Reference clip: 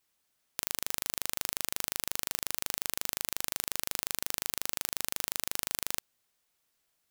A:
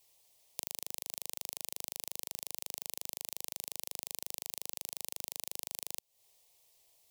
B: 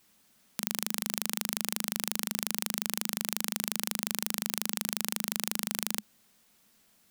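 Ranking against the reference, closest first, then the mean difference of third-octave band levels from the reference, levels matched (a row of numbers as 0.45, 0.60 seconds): B, A; 2.0, 4.5 decibels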